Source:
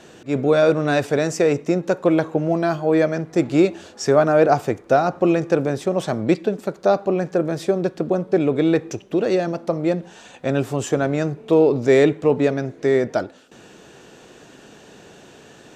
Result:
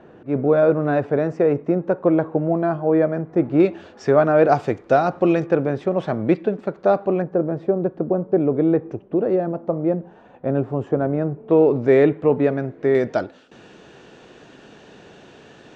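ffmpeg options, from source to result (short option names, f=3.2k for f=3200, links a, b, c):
-af "asetnsamples=n=441:p=0,asendcmd='3.6 lowpass f 2600;4.46 lowpass f 4300;5.46 lowpass f 2300;7.22 lowpass f 1000;11.51 lowpass f 2000;12.95 lowpass f 4400',lowpass=1.3k"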